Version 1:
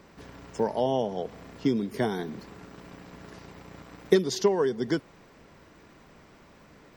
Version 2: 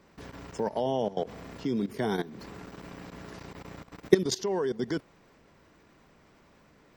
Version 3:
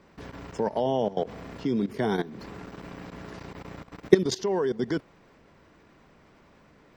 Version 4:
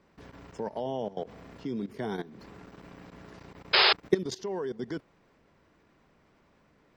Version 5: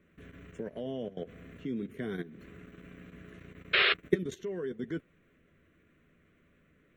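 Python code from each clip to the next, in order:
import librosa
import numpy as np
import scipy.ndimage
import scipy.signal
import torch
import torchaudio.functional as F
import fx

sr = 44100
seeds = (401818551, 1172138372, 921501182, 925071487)

y1 = fx.level_steps(x, sr, step_db=16)
y1 = y1 * 10.0 ** (4.0 / 20.0)
y2 = fx.high_shelf(y1, sr, hz=7000.0, db=-10.0)
y2 = y2 * 10.0 ** (3.0 / 20.0)
y3 = fx.spec_paint(y2, sr, seeds[0], shape='noise', start_s=3.73, length_s=0.2, low_hz=350.0, high_hz=5200.0, level_db=-13.0)
y3 = y3 * 10.0 ** (-7.5 / 20.0)
y4 = fx.fixed_phaser(y3, sr, hz=2100.0, stages=4)
y4 = fx.doubler(y4, sr, ms=12.0, db=-10.0)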